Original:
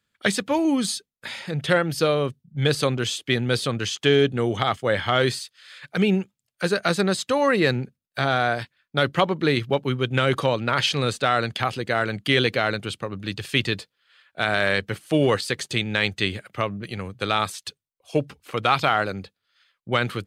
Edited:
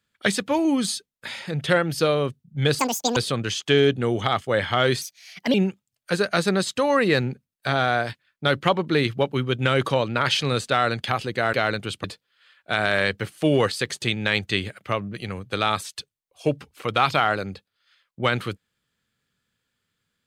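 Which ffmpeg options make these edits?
-filter_complex "[0:a]asplit=7[a][b][c][d][e][f][g];[a]atrim=end=2.794[h];[b]atrim=start=2.79:end=3.52,asetpts=PTS-STARTPTS,asetrate=85995,aresample=44100,atrim=end_sample=16509,asetpts=PTS-STARTPTS[i];[c]atrim=start=3.516:end=5.374[j];[d]atrim=start=5.37:end=6.06,asetpts=PTS-STARTPTS,asetrate=57771,aresample=44100,atrim=end_sample=23228,asetpts=PTS-STARTPTS[k];[e]atrim=start=6.056:end=12.052[l];[f]atrim=start=12.528:end=13.042[m];[g]atrim=start=13.728[n];[h][i]acrossfade=d=0.004:c1=hsin:c2=hsin[o];[o][j]acrossfade=d=0.004:c1=hsin:c2=hsin[p];[p][k]acrossfade=d=0.004:c1=hsin:c2=hsin[q];[q][l]acrossfade=d=0.004:c1=hsin:c2=hsin[r];[r][m]acrossfade=d=0.004:c1=hsin:c2=hsin[s];[s][n]acrossfade=d=0.004:c1=hsin:c2=hsin"

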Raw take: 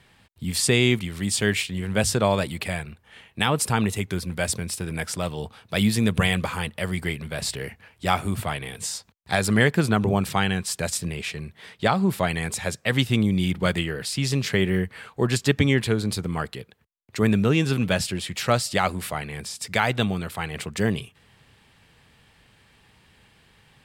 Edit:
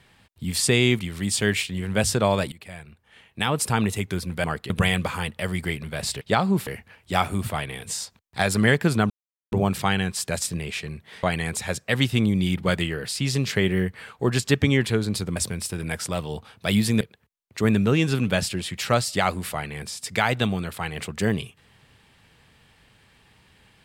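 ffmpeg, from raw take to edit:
-filter_complex "[0:a]asplit=10[a][b][c][d][e][f][g][h][i][j];[a]atrim=end=2.52,asetpts=PTS-STARTPTS,afade=t=out:st=2.516:d=0.004:c=hsin:silence=0.125893[k];[b]atrim=start=2.52:end=4.442,asetpts=PTS-STARTPTS,afade=t=in:d=1.22:silence=0.125893[l];[c]atrim=start=16.328:end=16.592[m];[d]atrim=start=6.088:end=7.602[n];[e]atrim=start=11.738:end=12.202[o];[f]atrim=start=7.598:end=10.03,asetpts=PTS-STARTPTS,afade=t=out:st=2.428:d=0.004:c=hsin,apad=pad_dur=0.42[p];[g]atrim=start=10.03:end=11.742,asetpts=PTS-STARTPTS,afade=t=in:d=0.004:c=hsin[q];[h]atrim=start=12.198:end=16.332[r];[i]atrim=start=4.438:end=6.092[s];[j]atrim=start=16.588[t];[k][l]concat=n=2:v=0:a=1[u];[u][m]acrossfade=d=0.004:c1=hsin:c2=hsin[v];[v][n]acrossfade=d=0.004:c1=hsin:c2=hsin[w];[w][o]acrossfade=d=0.004:c1=hsin:c2=hsin[x];[p][q]concat=n=2:v=0:a=1[y];[x][y]acrossfade=d=0.004:c1=hsin:c2=hsin[z];[z][r]acrossfade=d=0.004:c1=hsin:c2=hsin[aa];[aa][s]acrossfade=d=0.004:c1=hsin:c2=hsin[ab];[ab][t]acrossfade=d=0.004:c1=hsin:c2=hsin"

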